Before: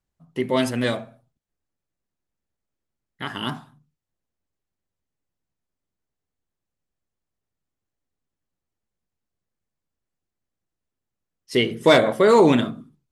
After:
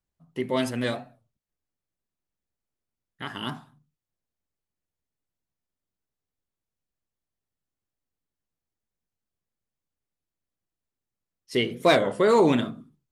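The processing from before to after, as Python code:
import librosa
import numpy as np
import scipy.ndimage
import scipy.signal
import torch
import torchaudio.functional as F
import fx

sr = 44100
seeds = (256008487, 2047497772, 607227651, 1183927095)

y = fx.record_warp(x, sr, rpm=33.33, depth_cents=160.0)
y = y * librosa.db_to_amplitude(-4.5)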